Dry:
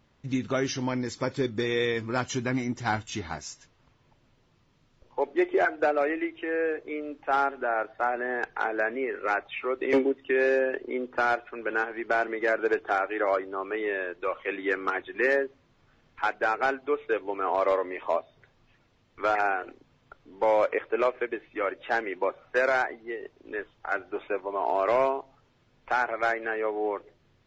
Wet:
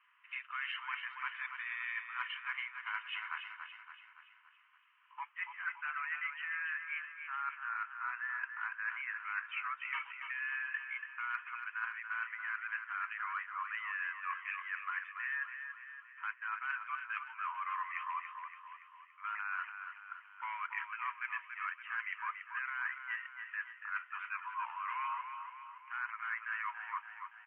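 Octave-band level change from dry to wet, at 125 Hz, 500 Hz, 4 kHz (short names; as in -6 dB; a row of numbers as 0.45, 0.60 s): n/a, under -40 dB, -8.5 dB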